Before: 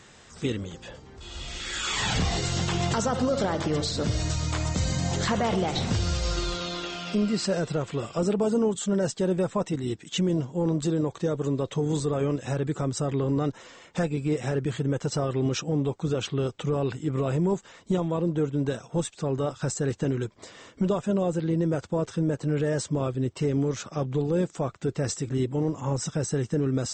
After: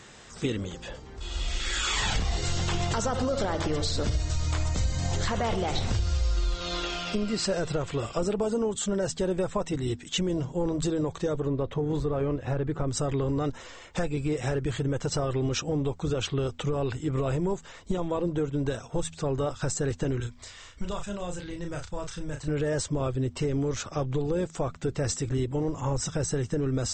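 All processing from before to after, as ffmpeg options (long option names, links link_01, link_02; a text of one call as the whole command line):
ffmpeg -i in.wav -filter_complex "[0:a]asettb=1/sr,asplit=3[link_01][link_02][link_03];[link_01]atrim=end=11.404[link_04];[link_02]atrim=start=11.4:end=12.88,asetpts=PTS-STARTPTS,afade=type=in:duration=0.004:curve=qsin,afade=type=out:start_time=1.476:duration=0.004:curve=qsin,highshelf=frequency=3100:gain=-10.5,adynamicsmooth=sensitivity=7.5:basefreq=4100[link_05];[link_03]atrim=start=12.876[link_06];[link_04][link_05]acrossfade=duration=0.004:curve1=hsin:curve2=qsin[link_07];[link_07][link_06]acrossfade=duration=0.004:curve1=qsin:curve2=hsin,asettb=1/sr,asplit=3[link_08][link_09][link_10];[link_08]atrim=end=20.204[link_11];[link_09]atrim=start=20.2:end=22.48,asetpts=PTS-STARTPTS,afade=type=in:duration=0.004:curve=qsin,afade=type=out:start_time=2.276:duration=0.004:curve=qsin,equalizer=frequency=370:width_type=o:width=2.7:gain=-14,asplit=2[link_12][link_13];[link_13]adelay=34,volume=-6dB[link_14];[link_12][link_14]amix=inputs=2:normalize=0,atrim=end_sample=100548[link_15];[link_10]atrim=start=22.476[link_16];[link_11][link_15]acrossfade=duration=0.004:curve1=hsin:curve2=qsin[link_17];[link_17][link_16]acrossfade=duration=0.004:curve1=qsin:curve2=hsin,bandreject=frequency=81.1:width_type=h:width=4,bandreject=frequency=162.2:width_type=h:width=4,bandreject=frequency=243.3:width_type=h:width=4,asubboost=boost=8.5:cutoff=57,acompressor=threshold=-26dB:ratio=6,volume=2.5dB" out.wav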